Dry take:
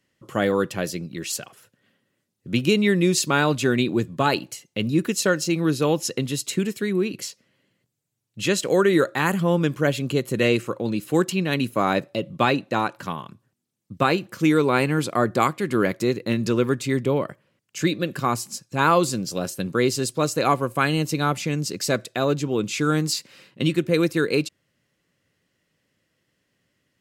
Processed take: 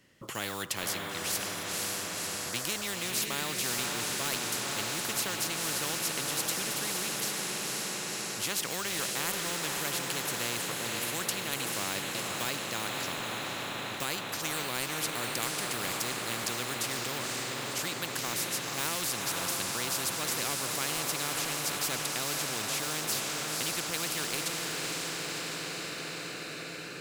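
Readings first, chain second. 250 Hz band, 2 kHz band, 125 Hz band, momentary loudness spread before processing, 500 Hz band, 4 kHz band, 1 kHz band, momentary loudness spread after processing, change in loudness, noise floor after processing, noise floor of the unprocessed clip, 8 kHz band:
-18.0 dB, -6.0 dB, -16.5 dB, 9 LU, -16.0 dB, -1.0 dB, -10.5 dB, 4 LU, -8.5 dB, -39 dBFS, -74 dBFS, +1.5 dB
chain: block-companded coder 7-bit; on a send: echo that smears into a reverb 520 ms, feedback 64%, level -6 dB; on the sum: spectrum-flattening compressor 4:1; trim -8 dB

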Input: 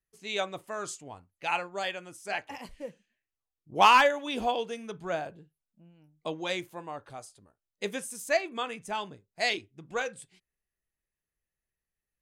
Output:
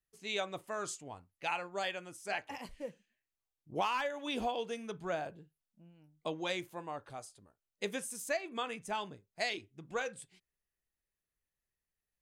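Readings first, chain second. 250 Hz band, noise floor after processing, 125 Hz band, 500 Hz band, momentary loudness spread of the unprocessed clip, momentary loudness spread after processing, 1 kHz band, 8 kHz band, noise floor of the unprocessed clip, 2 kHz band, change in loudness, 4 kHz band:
-4.0 dB, under -85 dBFS, -3.5 dB, -6.5 dB, 19 LU, 11 LU, -11.0 dB, -4.0 dB, under -85 dBFS, -8.5 dB, -9.0 dB, -7.5 dB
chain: compression 8:1, threshold -28 dBFS, peak gain reduction 13.5 dB; trim -2.5 dB

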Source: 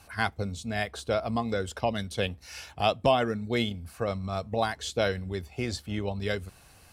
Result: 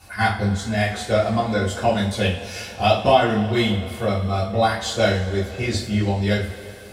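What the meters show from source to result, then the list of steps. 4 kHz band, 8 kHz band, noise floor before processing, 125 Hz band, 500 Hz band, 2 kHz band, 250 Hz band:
+8.0 dB, +8.5 dB, -56 dBFS, +11.5 dB, +8.0 dB, +8.5 dB, +10.0 dB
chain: in parallel at -11.5 dB: saturation -23 dBFS, distortion -11 dB; on the sum: two-slope reverb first 0.36 s, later 3.1 s, from -18 dB, DRR -7.5 dB; trim -1.5 dB

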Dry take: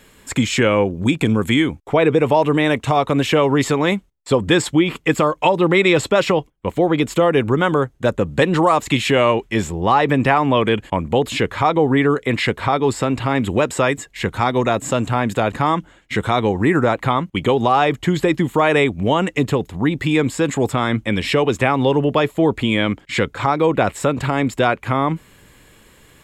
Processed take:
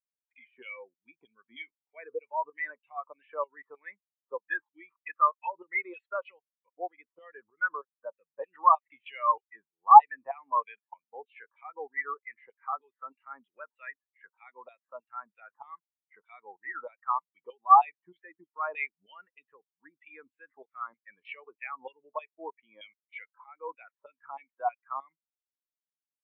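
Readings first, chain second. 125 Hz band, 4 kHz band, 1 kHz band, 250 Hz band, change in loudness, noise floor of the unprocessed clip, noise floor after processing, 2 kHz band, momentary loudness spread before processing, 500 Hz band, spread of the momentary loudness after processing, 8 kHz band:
under -40 dB, under -30 dB, -6.0 dB, under -40 dB, -10.0 dB, -51 dBFS, under -85 dBFS, -16.0 dB, 5 LU, -25.5 dB, 22 LU, under -40 dB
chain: LFO band-pass saw down 3.2 Hz 850–3100 Hz; spectral contrast expander 2.5:1; trim +4 dB

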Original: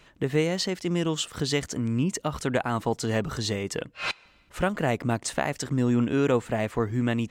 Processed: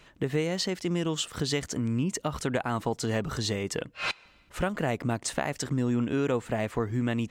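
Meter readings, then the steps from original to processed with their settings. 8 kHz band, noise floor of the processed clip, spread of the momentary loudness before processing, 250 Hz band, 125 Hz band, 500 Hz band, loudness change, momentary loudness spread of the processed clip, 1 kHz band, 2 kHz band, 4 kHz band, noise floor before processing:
-1.0 dB, -59 dBFS, 7 LU, -3.0 dB, -2.5 dB, -3.0 dB, -2.5 dB, 5 LU, -3.0 dB, -2.5 dB, -1.5 dB, -59 dBFS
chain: compression 2:1, threshold -26 dBFS, peak gain reduction 5 dB

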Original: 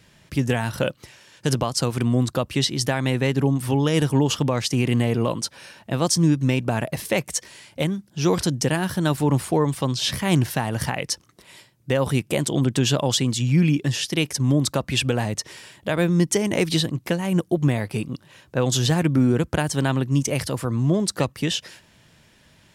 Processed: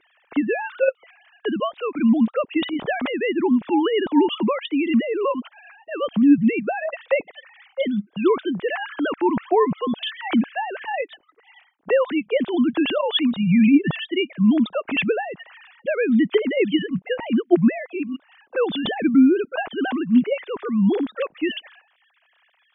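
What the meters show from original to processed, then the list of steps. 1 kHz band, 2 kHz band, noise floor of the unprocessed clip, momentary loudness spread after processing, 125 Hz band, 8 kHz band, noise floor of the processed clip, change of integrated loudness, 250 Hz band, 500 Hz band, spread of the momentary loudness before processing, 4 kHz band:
+2.0 dB, +1.5 dB, -57 dBFS, 11 LU, -12.0 dB, under -40 dB, -63 dBFS, +1.0 dB, +3.5 dB, +3.0 dB, 8 LU, -3.5 dB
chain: formants replaced by sine waves; trim +1 dB

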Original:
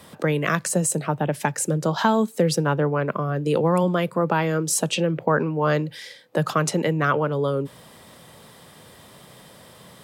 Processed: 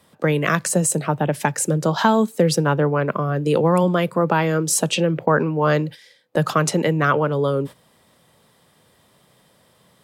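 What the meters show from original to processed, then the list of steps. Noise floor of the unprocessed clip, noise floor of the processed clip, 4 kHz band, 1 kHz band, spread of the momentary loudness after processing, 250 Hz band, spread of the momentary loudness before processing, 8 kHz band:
-48 dBFS, -58 dBFS, +3.0 dB, +3.0 dB, 5 LU, +3.0 dB, 5 LU, +3.0 dB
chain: gate -34 dBFS, range -13 dB; trim +3 dB

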